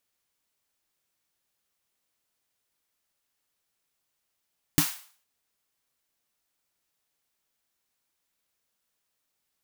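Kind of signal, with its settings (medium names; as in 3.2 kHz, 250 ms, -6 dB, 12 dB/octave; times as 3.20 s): snare drum length 0.46 s, tones 160 Hz, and 290 Hz, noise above 790 Hz, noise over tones -4 dB, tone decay 0.11 s, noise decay 0.46 s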